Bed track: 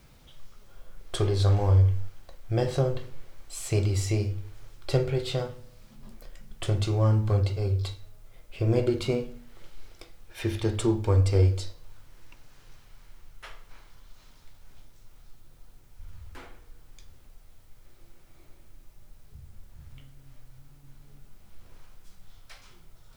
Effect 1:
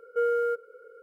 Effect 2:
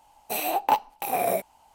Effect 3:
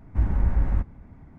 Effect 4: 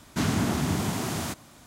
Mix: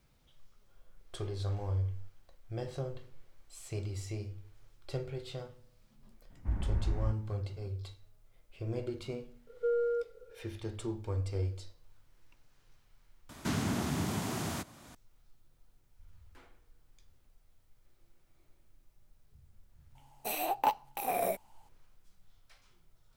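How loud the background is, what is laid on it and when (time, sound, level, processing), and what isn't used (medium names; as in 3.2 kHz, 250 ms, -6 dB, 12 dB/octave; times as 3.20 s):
bed track -13 dB
6.30 s: add 3 -10.5 dB
9.47 s: add 1 -3.5 dB + boxcar filter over 23 samples
13.29 s: replace with 4 -7 dB + three bands compressed up and down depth 40%
19.95 s: add 2 -7 dB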